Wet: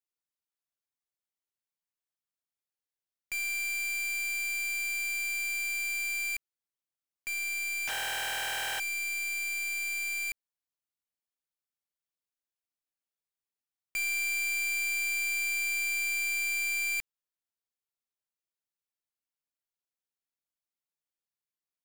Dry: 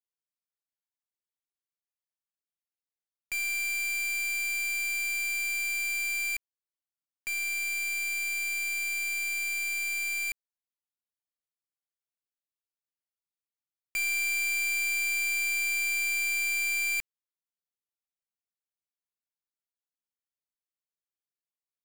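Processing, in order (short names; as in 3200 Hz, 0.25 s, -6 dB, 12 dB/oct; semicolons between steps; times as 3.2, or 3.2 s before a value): 7.87–8.8 cycle switcher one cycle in 3, inverted; gain -2 dB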